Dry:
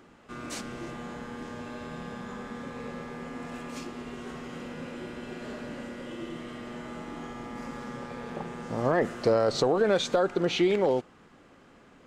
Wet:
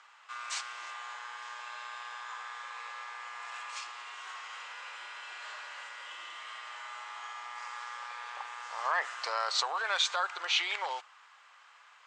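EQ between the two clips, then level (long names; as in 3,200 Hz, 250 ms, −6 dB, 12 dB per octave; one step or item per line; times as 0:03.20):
elliptic band-pass filter 970–8,400 Hz, stop band 60 dB
high-frequency loss of the air 74 metres
high-shelf EQ 5,000 Hz +7.5 dB
+3.5 dB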